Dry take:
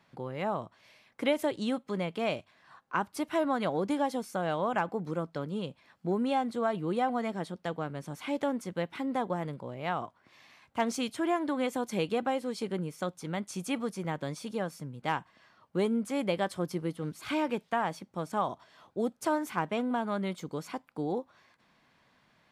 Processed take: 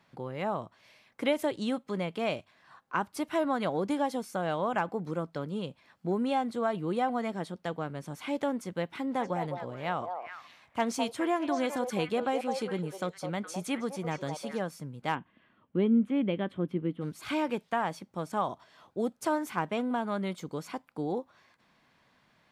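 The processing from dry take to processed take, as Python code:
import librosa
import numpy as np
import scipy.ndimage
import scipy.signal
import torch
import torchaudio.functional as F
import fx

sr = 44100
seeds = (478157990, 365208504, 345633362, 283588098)

y = fx.echo_stepped(x, sr, ms=208, hz=680.0, octaves=1.4, feedback_pct=70, wet_db=-2.5, at=(9.11, 14.6), fade=0.02)
y = fx.curve_eq(y, sr, hz=(150.0, 240.0, 770.0, 1200.0, 3200.0, 5000.0), db=(0, 7, -8, -6, -3, -26), at=(15.14, 17.0), fade=0.02)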